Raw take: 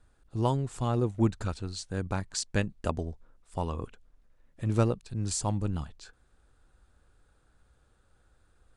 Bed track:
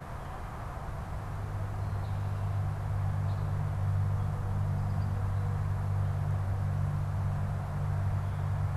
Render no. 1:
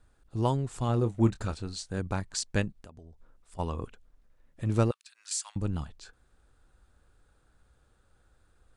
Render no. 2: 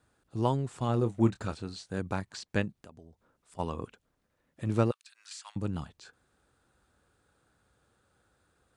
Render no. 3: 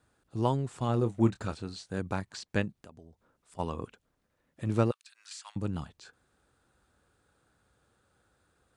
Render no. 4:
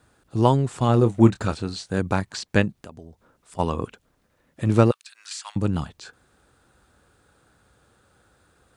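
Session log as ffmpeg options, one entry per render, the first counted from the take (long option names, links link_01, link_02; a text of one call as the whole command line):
ffmpeg -i in.wav -filter_complex "[0:a]asettb=1/sr,asplit=3[link_01][link_02][link_03];[link_01]atrim=end=0.864[link_04];[link_02]atrim=start=0.86:end=1.99,asetpts=PTS-STARTPTS,afade=type=in:duration=0.004:curve=qsin,afade=type=out:start_time=1.126:duration=0.004:curve=qsin,asplit=2[link_05][link_06];[link_06]adelay=26,volume=-11dB[link_07];[link_05][link_07]amix=inputs=2:normalize=0,atrim=end_sample=49833[link_08];[link_03]atrim=start=1.986[link_09];[link_04][link_08]acrossfade=duration=0.004:curve1=hsin:curve2=qsin[link_10];[link_10][link_09]acrossfade=duration=0.004:curve1=qsin:curve2=hsin,asplit=3[link_11][link_12][link_13];[link_11]afade=type=out:start_time=2.71:duration=0.02[link_14];[link_12]acompressor=threshold=-46dB:ratio=8:attack=3.2:release=140:knee=1:detection=peak,afade=type=in:start_time=2.71:duration=0.02,afade=type=out:start_time=3.58:duration=0.02[link_15];[link_13]afade=type=in:start_time=3.58:duration=0.02[link_16];[link_14][link_15][link_16]amix=inputs=3:normalize=0,asettb=1/sr,asplit=3[link_17][link_18][link_19];[link_17]atrim=end=4.914[link_20];[link_18]atrim=start=4.91:end=5.56,asetpts=PTS-STARTPTS,afade=type=in:duration=0.004:curve=qsin,afade=type=out:start_time=0.646:duration=0.004:curve=qsin,highpass=frequency=1400:width=0.5412,highpass=frequency=1400:width=1.3066[link_21];[link_19]atrim=start=5.556[link_22];[link_20][link_21]acrossfade=duration=0.004:curve1=hsin:curve2=qsin[link_23];[link_23][link_22]acrossfade=duration=0.004:curve1=qsin:curve2=hsin" out.wav
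ffmpeg -i in.wav -filter_complex "[0:a]highpass=110,acrossover=split=3900[link_01][link_02];[link_02]acompressor=threshold=-50dB:ratio=4:attack=1:release=60[link_03];[link_01][link_03]amix=inputs=2:normalize=0" out.wav
ffmpeg -i in.wav -af anull out.wav
ffmpeg -i in.wav -af "volume=10dB,alimiter=limit=-2dB:level=0:latency=1" out.wav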